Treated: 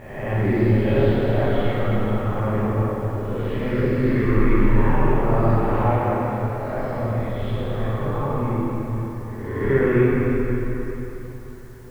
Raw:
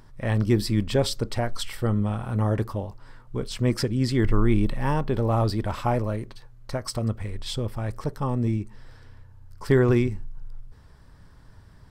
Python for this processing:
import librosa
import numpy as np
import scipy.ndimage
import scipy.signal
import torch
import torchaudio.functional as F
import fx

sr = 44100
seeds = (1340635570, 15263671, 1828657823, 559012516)

y = fx.spec_swells(x, sr, rise_s=1.09)
y = scipy.signal.sosfilt(scipy.signal.cheby2(4, 50, 6300.0, 'lowpass', fs=sr, output='sos'), y)
y = fx.quant_dither(y, sr, seeds[0], bits=10, dither='triangular')
y = fx.rev_plate(y, sr, seeds[1], rt60_s=3.9, hf_ratio=0.75, predelay_ms=0, drr_db=-8.5)
y = F.gain(torch.from_numpy(y), -6.5).numpy()